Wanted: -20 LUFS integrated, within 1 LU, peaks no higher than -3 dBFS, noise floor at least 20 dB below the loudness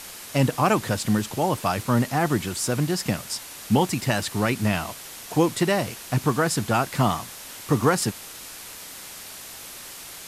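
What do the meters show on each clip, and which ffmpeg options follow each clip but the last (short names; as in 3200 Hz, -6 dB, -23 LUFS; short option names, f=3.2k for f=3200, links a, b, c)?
noise floor -40 dBFS; noise floor target -44 dBFS; loudness -24.0 LUFS; peak -8.0 dBFS; loudness target -20.0 LUFS
-> -af "afftdn=nr=6:nf=-40"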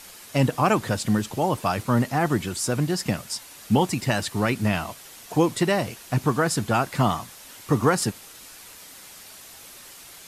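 noise floor -45 dBFS; loudness -24.0 LUFS; peak -8.5 dBFS; loudness target -20.0 LUFS
-> -af "volume=4dB"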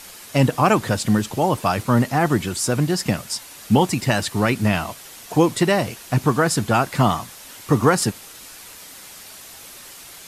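loudness -20.0 LUFS; peak -4.5 dBFS; noise floor -41 dBFS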